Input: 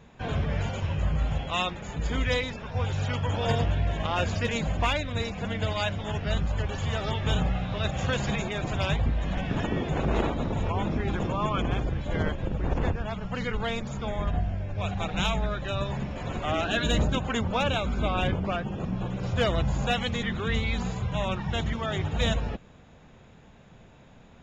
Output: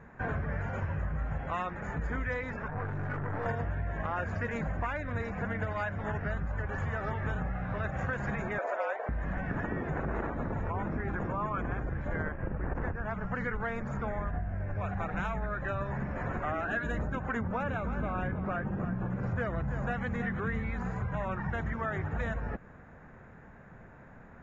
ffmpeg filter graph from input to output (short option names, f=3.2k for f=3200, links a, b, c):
-filter_complex "[0:a]asettb=1/sr,asplit=3[a][b][c];[a]atrim=end=2.684[d];[b]atrim=start=2.68:end=3.46,asetpts=PTS-STARTPTS,afade=t=in:d=0.004:c=qsin,afade=t=out:st=0.776:d=0.004:c=qsin,lowpass=f=1.3k:p=1,aecho=1:1:6.8:0.92,atrim=end_sample=34398,aeval=exprs='(tanh(35.5*val(0)+0.5)-tanh(0.5))/35.5':c=same[e];[c]atrim=start=3.456[f];[d][e]acrossfade=d=0.004:c1=hsin:c2=qsin[g];[g][f]acrossfade=d=0.004:c1=qsin:c2=hsin,asettb=1/sr,asplit=3[h][i][j];[h]atrim=end=8.584[k];[i]atrim=start=8.58:end=9.09,asetpts=PTS-STARTPTS,afade=t=in:d=0.004:c=qsin,afade=t=out:st=0.506:d=0.004:c=qsin,equalizer=f=660:t=o:w=1.1:g=10.5,afreqshift=-54,highpass=f=450:w=0.5412,highpass=f=450:w=1.3066[l];[j]atrim=start=9.086[m];[k][l]acrossfade=d=0.004:c1=hsin:c2=qsin[n];[n][m]acrossfade=d=0.004:c1=qsin:c2=hsin,asettb=1/sr,asplit=3[o][p][q];[o]atrim=end=12.284[r];[p]atrim=start=12.28:end=12.75,asetpts=PTS-STARTPTS,afade=t=in:d=0.004:c=qsin,afade=t=out:st=0.466:d=0.004:c=qsin,aeval=exprs='sgn(val(0))*max(abs(val(0))-0.00473,0)':c=same,asuperstop=centerf=5000:order=8:qfactor=1.1[s];[q]atrim=start=12.746[t];[r][s]acrossfade=d=0.004:c1=hsin:c2=qsin[u];[u][t]acrossfade=d=0.004:c1=qsin:c2=hsin,asettb=1/sr,asplit=3[v][w][x];[v]atrim=end=17.364[y];[w]atrim=start=17.36:end=20.71,asetpts=PTS-STARTPTS,afade=t=in:d=0.004:c=qsin,afade=t=out:st=3.346:d=0.004:c=qsin,equalizer=f=170:w=0.66:g=4.5,aecho=1:1:323:0.282,atrim=end_sample=147735[z];[x]atrim=start=20.706[aa];[y][z]acrossfade=d=0.004:c1=hsin:c2=qsin[ab];[ab][aa]acrossfade=d=0.004:c1=qsin:c2=hsin,highshelf=f=2.4k:t=q:w=3:g=-12,acompressor=threshold=-30dB:ratio=6"